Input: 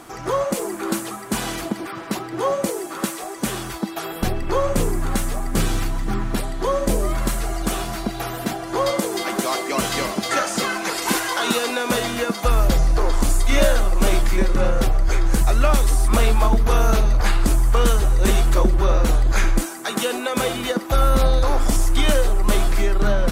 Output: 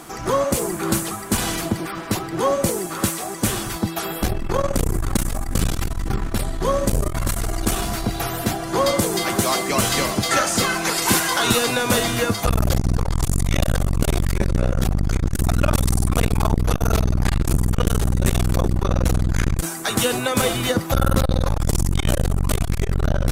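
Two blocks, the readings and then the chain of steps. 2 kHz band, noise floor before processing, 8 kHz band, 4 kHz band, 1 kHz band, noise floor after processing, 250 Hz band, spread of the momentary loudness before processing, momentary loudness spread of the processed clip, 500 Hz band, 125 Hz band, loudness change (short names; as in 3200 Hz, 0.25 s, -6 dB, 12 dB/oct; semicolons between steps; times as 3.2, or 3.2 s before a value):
+0.5 dB, -32 dBFS, +3.5 dB, +2.0 dB, -0.5 dB, -30 dBFS, +1.0 dB, 8 LU, 6 LU, -1.0 dB, +3.0 dB, 0.0 dB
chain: octaver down 1 oct, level -1 dB; high shelf 4800 Hz +5.5 dB; core saturation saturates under 240 Hz; gain +1.5 dB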